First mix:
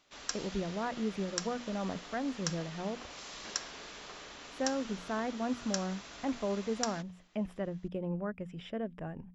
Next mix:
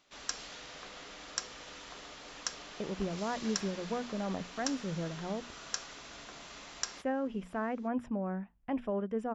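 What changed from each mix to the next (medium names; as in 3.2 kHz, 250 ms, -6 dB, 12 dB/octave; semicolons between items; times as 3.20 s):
speech: entry +2.45 s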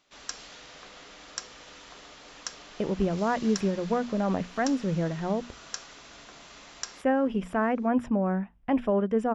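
speech +9.0 dB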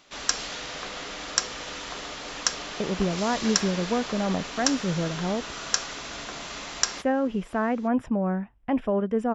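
speech: remove hum notches 60/120/180/240 Hz; background +12.0 dB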